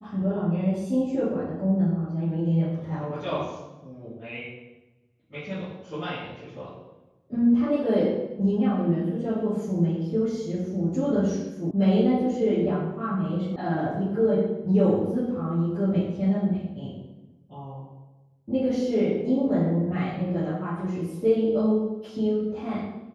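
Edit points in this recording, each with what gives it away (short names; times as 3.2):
11.71 sound cut off
13.56 sound cut off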